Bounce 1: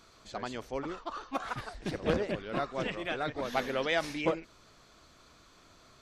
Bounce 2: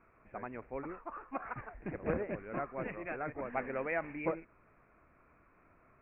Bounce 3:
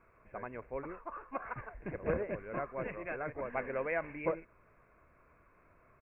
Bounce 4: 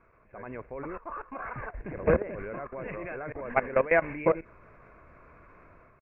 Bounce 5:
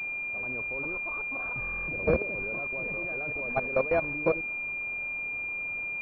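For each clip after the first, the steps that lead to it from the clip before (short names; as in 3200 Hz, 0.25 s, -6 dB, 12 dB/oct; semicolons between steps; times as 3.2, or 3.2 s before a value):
steep low-pass 2500 Hz 96 dB/oct; gain -5 dB
comb 1.9 ms, depth 31%
level quantiser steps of 17 dB; air absorption 140 m; AGC gain up to 9 dB; gain +5.5 dB
requantised 8-bit, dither triangular; stuck buffer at 1.6/4.93, samples 1024, times 11; pulse-width modulation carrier 2400 Hz; gain -1.5 dB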